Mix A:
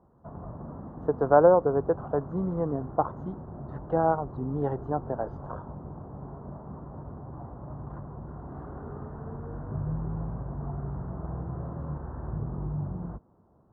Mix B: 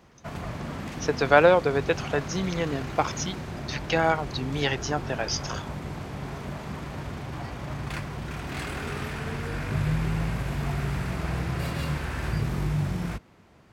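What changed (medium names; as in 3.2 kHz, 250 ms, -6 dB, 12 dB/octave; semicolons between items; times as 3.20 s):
background +5.5 dB; master: remove inverse Chebyshev low-pass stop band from 2.2 kHz, stop band 40 dB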